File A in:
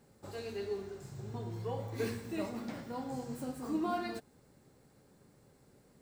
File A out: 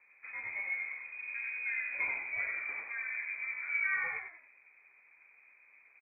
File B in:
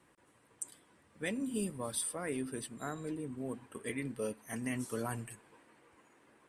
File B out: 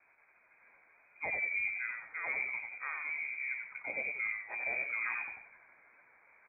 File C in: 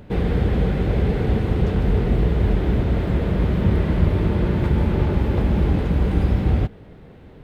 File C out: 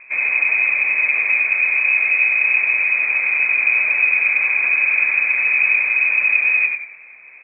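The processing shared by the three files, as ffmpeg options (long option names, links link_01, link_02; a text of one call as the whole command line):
ffmpeg -i in.wav -filter_complex "[0:a]asplit=2[link_01][link_02];[link_02]asplit=4[link_03][link_04][link_05][link_06];[link_03]adelay=91,afreqshift=62,volume=-4.5dB[link_07];[link_04]adelay=182,afreqshift=124,volume=-13.9dB[link_08];[link_05]adelay=273,afreqshift=186,volume=-23.2dB[link_09];[link_06]adelay=364,afreqshift=248,volume=-32.6dB[link_10];[link_07][link_08][link_09][link_10]amix=inputs=4:normalize=0[link_11];[link_01][link_11]amix=inputs=2:normalize=0,lowpass=frequency=2200:width_type=q:width=0.5098,lowpass=frequency=2200:width_type=q:width=0.6013,lowpass=frequency=2200:width_type=q:width=0.9,lowpass=frequency=2200:width_type=q:width=2.563,afreqshift=-2600" out.wav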